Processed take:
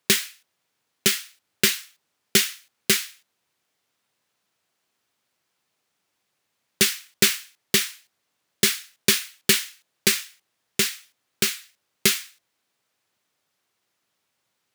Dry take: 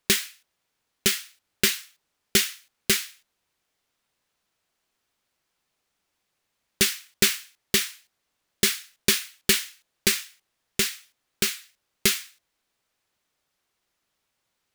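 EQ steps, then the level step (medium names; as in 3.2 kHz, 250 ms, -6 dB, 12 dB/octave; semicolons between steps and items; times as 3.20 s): high-pass 92 Hz 24 dB/octave; +2.0 dB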